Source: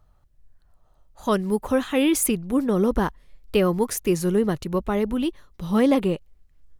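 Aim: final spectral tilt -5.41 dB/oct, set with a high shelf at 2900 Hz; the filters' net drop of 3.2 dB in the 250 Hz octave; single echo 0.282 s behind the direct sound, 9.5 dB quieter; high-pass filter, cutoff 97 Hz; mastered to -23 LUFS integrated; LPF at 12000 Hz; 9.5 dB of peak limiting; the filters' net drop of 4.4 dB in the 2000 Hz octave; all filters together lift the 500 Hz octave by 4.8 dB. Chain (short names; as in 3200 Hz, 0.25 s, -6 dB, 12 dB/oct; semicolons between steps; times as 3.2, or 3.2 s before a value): HPF 97 Hz; LPF 12000 Hz; bell 250 Hz -6.5 dB; bell 500 Hz +8 dB; bell 2000 Hz -4 dB; high shelf 2900 Hz -5.5 dB; limiter -15 dBFS; echo 0.282 s -9.5 dB; gain +2 dB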